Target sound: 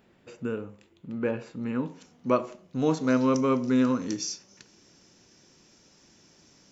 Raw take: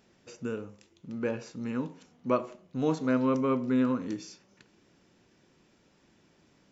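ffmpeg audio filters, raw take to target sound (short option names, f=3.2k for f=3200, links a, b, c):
-af "asetnsamples=n=441:p=0,asendcmd='1.87 equalizer g 3.5;3.07 equalizer g 14',equalizer=f=5.8k:t=o:w=0.79:g=-12.5,volume=3dB"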